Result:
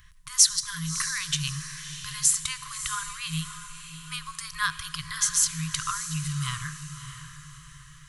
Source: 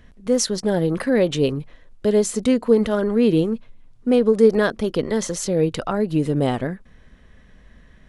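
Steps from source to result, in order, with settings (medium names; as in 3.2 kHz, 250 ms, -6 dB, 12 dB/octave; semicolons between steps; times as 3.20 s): pre-emphasis filter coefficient 0.8; FFT band-reject 170–1000 Hz; peaking EQ 880 Hz +8 dB 0.68 oct; echo that smears into a reverb 620 ms, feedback 43%, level -10.5 dB; on a send at -16 dB: reverberation RT60 1.5 s, pre-delay 53 ms; on the sum: trim +8 dB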